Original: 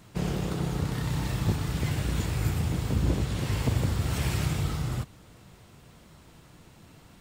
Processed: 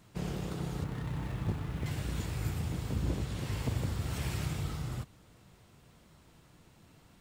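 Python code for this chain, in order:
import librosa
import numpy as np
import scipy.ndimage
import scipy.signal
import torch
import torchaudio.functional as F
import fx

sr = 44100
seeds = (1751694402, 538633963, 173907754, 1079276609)

y = fx.median_filter(x, sr, points=9, at=(0.84, 1.86))
y = y * 10.0 ** (-7.0 / 20.0)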